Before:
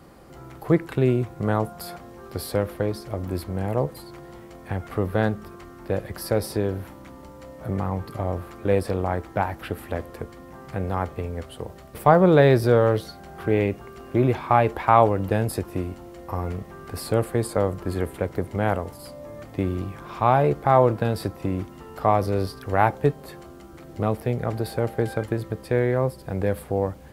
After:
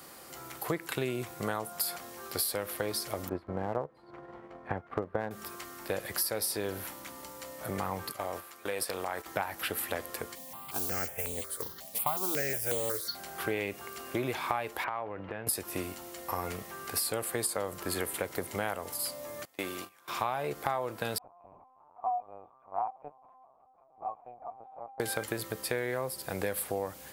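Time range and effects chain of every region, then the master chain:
3.29–5.31 s: low-pass 1.2 kHz + transient shaper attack +6 dB, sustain -11 dB
8.12–9.26 s: gate -32 dBFS, range -8 dB + bass shelf 300 Hz -9.5 dB + compression, threshold -25 dBFS
10.35–13.15 s: modulation noise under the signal 20 dB + stepped phaser 5.5 Hz 360–5300 Hz
14.84–15.47 s: low-pass 2.5 kHz 24 dB/octave + compression, threshold -29 dBFS
19.45–20.08 s: high-pass 510 Hz 6 dB/octave + gate -39 dBFS, range -19 dB
21.18–25.00 s: cascade formant filter a + LPC vocoder at 8 kHz pitch kept + tape noise reduction on one side only decoder only
whole clip: tilt EQ +4 dB/octave; compression 10:1, threshold -28 dBFS

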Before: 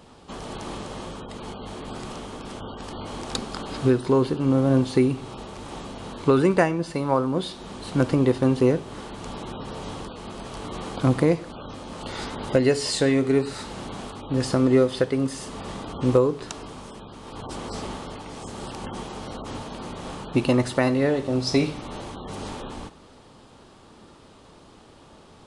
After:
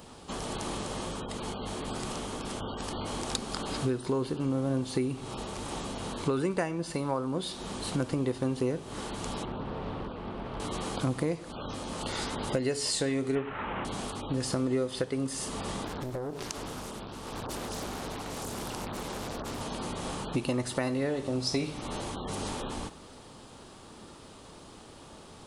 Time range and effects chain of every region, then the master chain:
9.45–10.60 s: distance through air 420 m + loudspeaker Doppler distortion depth 0.26 ms
13.35–13.85 s: CVSD coder 16 kbps + peaking EQ 1.2 kHz +7.5 dB 1.9 oct
15.85–19.61 s: compression 5:1, threshold -32 dBFS + loudspeaker Doppler distortion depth 0.99 ms
whole clip: treble shelf 7.2 kHz +11 dB; compression 2.5:1, threshold -31 dBFS

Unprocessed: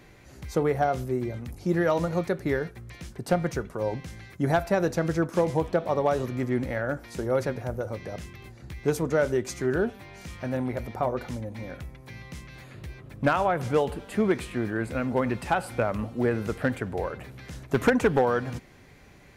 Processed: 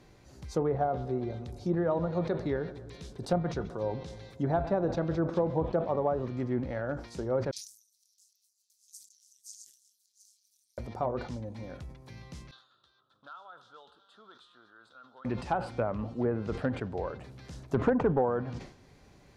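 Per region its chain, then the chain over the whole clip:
0.65–5.70 s: peaking EQ 3.7 kHz +7.5 dB 0.27 oct + filtered feedback delay 131 ms, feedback 70%, low-pass 1.9 kHz, level -16 dB
7.51–10.78 s: chunks repeated in reverse 341 ms, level -3 dB + inverse Chebyshev high-pass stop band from 1.4 kHz, stop band 70 dB + AM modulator 210 Hz, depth 75%
12.51–15.25 s: two resonant band-passes 2.2 kHz, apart 1.4 oct + compression 1.5:1, threshold -53 dBFS
whole clip: low-pass that closes with the level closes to 1.3 kHz, closed at -19.5 dBFS; FFT filter 1 kHz 0 dB, 2.1 kHz -7 dB, 4.7 kHz +2 dB, 13 kHz -5 dB; decay stretcher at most 110 dB/s; trim -4.5 dB

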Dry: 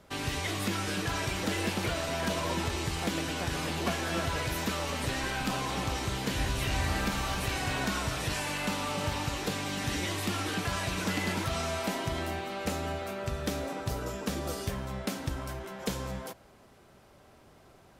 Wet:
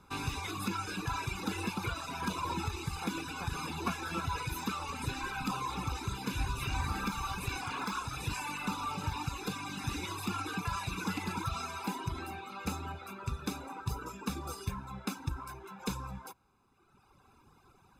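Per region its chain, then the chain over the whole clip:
7.61–8.13 s: bass shelf 160 Hz -7 dB + loudspeaker Doppler distortion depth 0.6 ms
whole clip: reverb removal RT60 1.7 s; peaking EQ 820 Hz +7 dB 1.1 oct; comb 0.8 ms, depth 86%; trim -6 dB

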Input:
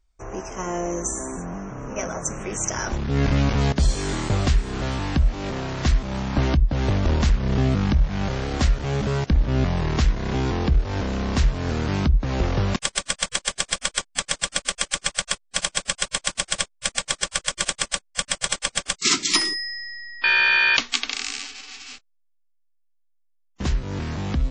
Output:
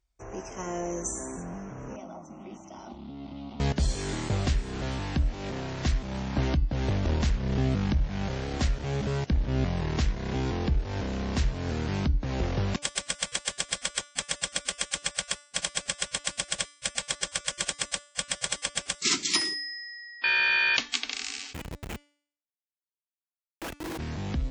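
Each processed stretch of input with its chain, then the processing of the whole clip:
1.96–3.60 s: compression 3:1, threshold -26 dBFS + cabinet simulation 110–3700 Hz, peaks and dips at 570 Hz -4 dB, 1 kHz -4 dB, 2.4 kHz -7 dB + static phaser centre 450 Hz, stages 6
21.53–23.99 s: formants replaced by sine waves + comb 6.1 ms, depth 75% + Schmitt trigger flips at -23.5 dBFS
whole clip: high-pass 42 Hz; peaking EQ 1.2 kHz -3.5 dB 0.52 oct; de-hum 291.1 Hz, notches 34; trim -5.5 dB

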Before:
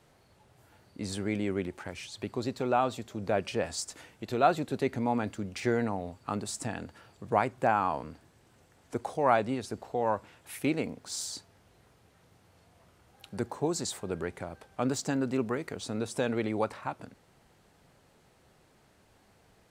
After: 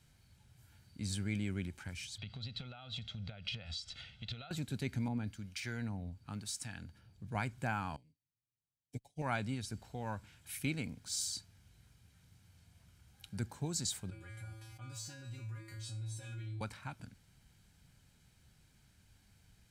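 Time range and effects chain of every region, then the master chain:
2.18–4.51 s: comb 1.5 ms, depth 71% + compression 10:1, threshold -37 dBFS + resonant low-pass 3.5 kHz, resonance Q 3.7
5.08–7.35 s: peaking EQ 7.7 kHz -6.5 dB 0.24 oct + harmonic tremolo 1 Hz, crossover 750 Hz
7.96–9.22 s: Butterworth band-stop 1.3 kHz, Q 1 + comb 7 ms, depth 88% + upward expansion 2.5:1, over -49 dBFS
14.10–16.61 s: feedback comb 110 Hz, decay 0.47 s, harmonics odd, mix 100% + level flattener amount 70%
whole clip: amplifier tone stack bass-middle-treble 6-0-2; comb 1.3 ms, depth 39%; trim +13 dB

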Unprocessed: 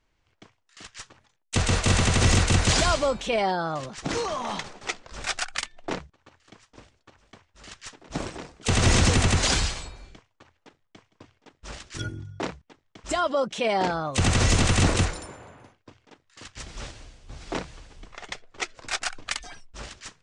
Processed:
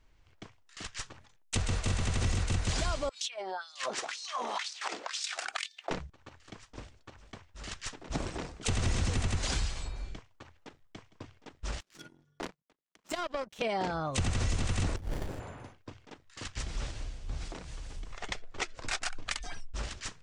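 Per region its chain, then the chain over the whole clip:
3.09–5.91 s: compressor with a negative ratio -36 dBFS + LFO high-pass sine 2 Hz 330–4900 Hz
11.80–13.62 s: steep high-pass 150 Hz 48 dB/octave + upward compressor, threshold -36 dBFS + power-law waveshaper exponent 2
14.96–15.40 s: peaking EQ 5.5 kHz +8.5 dB 0.81 oct + compressor with a negative ratio -32 dBFS + sliding maximum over 33 samples
17.45–18.22 s: treble shelf 7.4 kHz +9 dB + compression 4:1, threshold -45 dBFS
whole clip: bass shelf 92 Hz +9.5 dB; compression 3:1, threshold -34 dBFS; trim +1.5 dB

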